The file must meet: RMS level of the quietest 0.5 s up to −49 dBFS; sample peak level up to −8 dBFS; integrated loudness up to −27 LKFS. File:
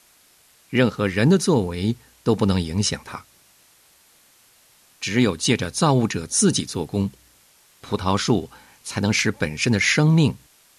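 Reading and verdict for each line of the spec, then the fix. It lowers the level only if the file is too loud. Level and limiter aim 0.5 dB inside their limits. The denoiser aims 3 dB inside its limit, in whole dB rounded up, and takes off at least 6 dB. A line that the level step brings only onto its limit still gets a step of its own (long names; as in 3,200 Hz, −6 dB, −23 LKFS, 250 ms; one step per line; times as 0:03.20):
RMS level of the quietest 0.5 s −56 dBFS: in spec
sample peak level −5.0 dBFS: out of spec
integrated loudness −21.0 LKFS: out of spec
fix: level −6.5 dB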